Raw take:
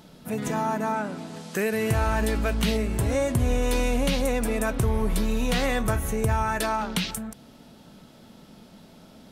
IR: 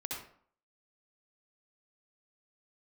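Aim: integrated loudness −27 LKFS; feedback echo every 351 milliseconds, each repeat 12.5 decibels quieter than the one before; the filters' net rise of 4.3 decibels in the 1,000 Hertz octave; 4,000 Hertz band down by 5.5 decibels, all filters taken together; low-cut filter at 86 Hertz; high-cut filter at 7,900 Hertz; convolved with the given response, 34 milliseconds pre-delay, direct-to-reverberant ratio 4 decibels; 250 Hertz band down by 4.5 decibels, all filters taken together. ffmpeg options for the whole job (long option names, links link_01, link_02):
-filter_complex "[0:a]highpass=86,lowpass=7900,equalizer=frequency=250:width_type=o:gain=-5.5,equalizer=frequency=1000:width_type=o:gain=6,equalizer=frequency=4000:width_type=o:gain=-7.5,aecho=1:1:351|702|1053:0.237|0.0569|0.0137,asplit=2[link_01][link_02];[1:a]atrim=start_sample=2205,adelay=34[link_03];[link_02][link_03]afir=irnorm=-1:irlink=0,volume=-5dB[link_04];[link_01][link_04]amix=inputs=2:normalize=0,volume=-2dB"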